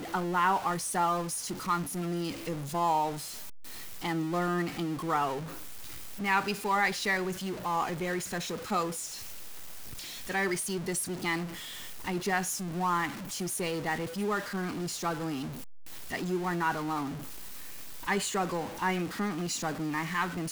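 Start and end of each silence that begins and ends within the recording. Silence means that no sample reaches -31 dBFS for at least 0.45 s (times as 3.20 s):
3.11–4.04 s
5.38–6.20 s
9.05–9.99 s
11.44–12.07 s
15.43–16.12 s
17.09–18.08 s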